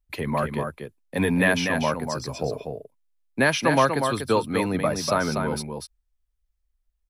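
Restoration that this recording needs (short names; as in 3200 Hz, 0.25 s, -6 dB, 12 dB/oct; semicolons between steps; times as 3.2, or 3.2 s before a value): inverse comb 0.243 s -6 dB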